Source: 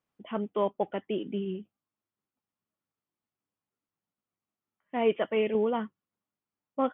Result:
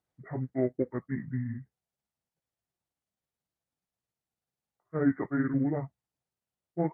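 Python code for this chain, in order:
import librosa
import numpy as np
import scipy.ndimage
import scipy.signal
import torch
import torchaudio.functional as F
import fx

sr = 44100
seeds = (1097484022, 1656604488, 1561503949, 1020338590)

y = fx.pitch_heads(x, sr, semitones=-8.0)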